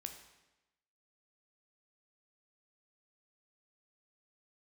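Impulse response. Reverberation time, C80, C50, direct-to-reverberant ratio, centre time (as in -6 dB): 1.0 s, 10.0 dB, 8.5 dB, 5.0 dB, 21 ms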